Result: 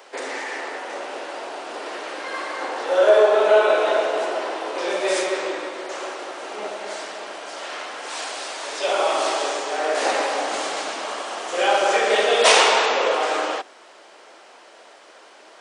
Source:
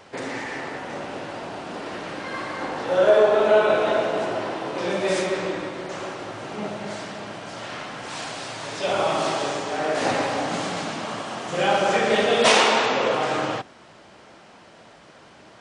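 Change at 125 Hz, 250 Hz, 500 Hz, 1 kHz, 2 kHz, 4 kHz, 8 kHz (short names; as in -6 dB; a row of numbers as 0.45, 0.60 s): under -20 dB, -5.0 dB, +1.5 dB, +2.0 dB, +2.5 dB, +3.0 dB, +4.5 dB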